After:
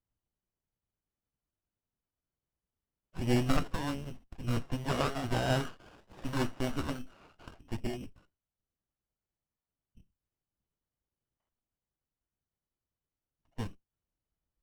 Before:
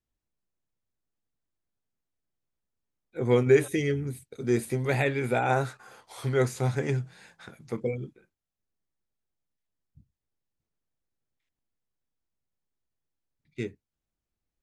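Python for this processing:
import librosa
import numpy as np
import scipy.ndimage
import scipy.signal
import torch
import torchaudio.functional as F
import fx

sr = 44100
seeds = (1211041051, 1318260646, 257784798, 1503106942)

y = fx.freq_invert(x, sr, carrier_hz=3000)
y = fx.running_max(y, sr, window=17)
y = y * librosa.db_to_amplitude(-1.5)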